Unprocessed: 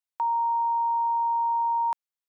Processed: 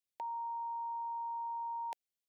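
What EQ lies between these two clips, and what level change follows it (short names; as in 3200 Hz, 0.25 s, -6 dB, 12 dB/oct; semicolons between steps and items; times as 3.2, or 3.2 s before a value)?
Butterworth band-stop 1200 Hz, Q 0.9; -1.0 dB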